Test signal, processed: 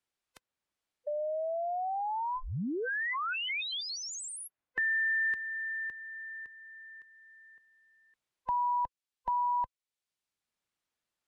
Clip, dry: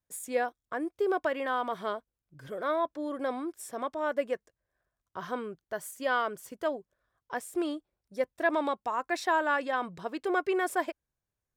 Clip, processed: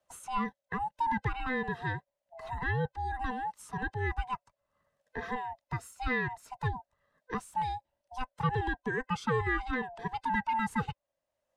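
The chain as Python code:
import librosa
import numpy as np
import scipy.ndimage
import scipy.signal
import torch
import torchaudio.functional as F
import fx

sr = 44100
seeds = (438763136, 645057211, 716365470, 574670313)

y = fx.band_swap(x, sr, width_hz=500)
y = scipy.signal.sosfilt(scipy.signal.butter(2, 8000.0, 'lowpass', fs=sr, output='sos'), y)
y = fx.peak_eq(y, sr, hz=6000.0, db=-4.0, octaves=1.3)
y = fx.band_squash(y, sr, depth_pct=40)
y = y * librosa.db_to_amplitude(-1.5)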